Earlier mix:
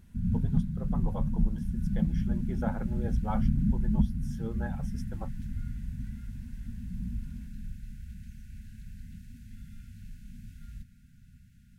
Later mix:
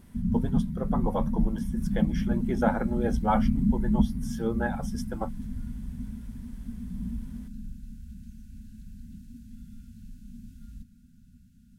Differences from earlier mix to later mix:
speech +10.5 dB
background: add octave-band graphic EQ 125/250/500/2,000 Hz −6/+8/+7/−12 dB

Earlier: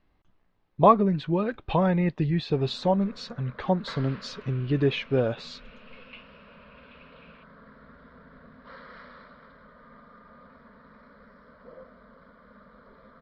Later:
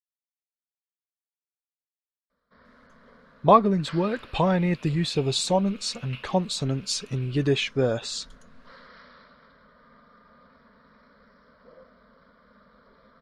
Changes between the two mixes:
speech: entry +2.65 s
first sound −5.0 dB
master: remove high-frequency loss of the air 260 metres

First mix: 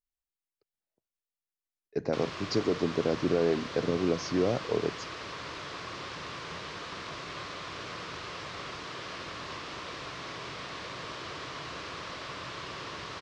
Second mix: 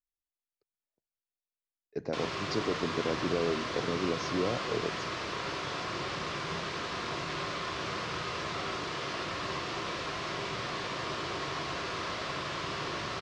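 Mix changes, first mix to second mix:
speech −4.5 dB
reverb: on, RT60 0.55 s

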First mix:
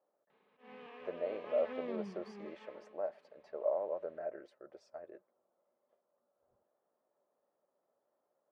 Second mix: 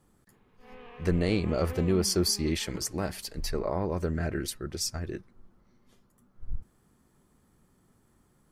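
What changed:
speech: remove four-pole ladder band-pass 630 Hz, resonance 75%
background +3.5 dB

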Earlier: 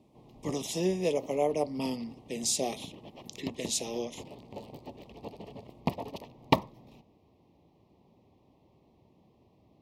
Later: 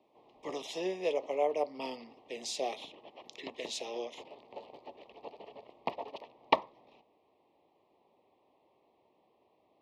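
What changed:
background: add high-shelf EQ 9,300 Hz −9.5 dB
master: add three-way crossover with the lows and the highs turned down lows −23 dB, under 380 Hz, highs −19 dB, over 4,500 Hz

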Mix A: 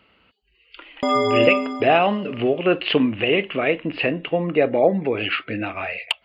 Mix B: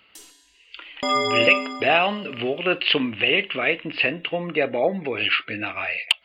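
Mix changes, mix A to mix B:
first sound: unmuted
master: add tilt shelving filter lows −6.5 dB, about 1,400 Hz

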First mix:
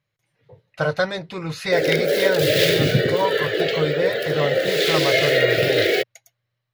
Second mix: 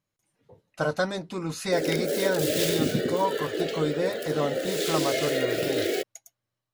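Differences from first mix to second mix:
background −4.0 dB
master: add octave-band graphic EQ 125/250/500/2,000/4,000/8,000 Hz −12/+8/−6/−9/−6/+7 dB

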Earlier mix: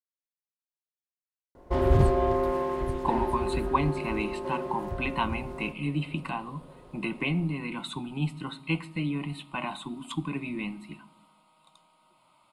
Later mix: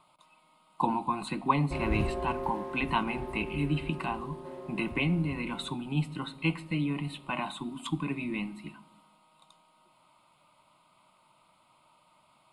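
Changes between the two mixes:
speech: entry −2.25 s
background −9.5 dB

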